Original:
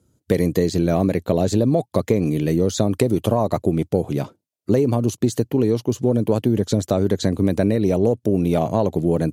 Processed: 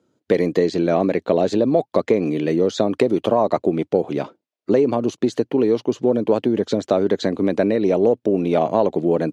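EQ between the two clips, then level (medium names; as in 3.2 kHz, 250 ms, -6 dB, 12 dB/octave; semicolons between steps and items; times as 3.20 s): high-pass 280 Hz 12 dB/octave; low-pass 3.7 kHz 12 dB/octave; +3.5 dB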